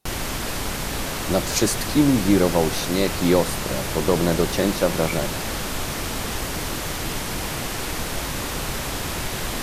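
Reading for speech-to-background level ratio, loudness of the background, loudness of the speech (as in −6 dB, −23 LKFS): 5.0 dB, −27.0 LKFS, −22.0 LKFS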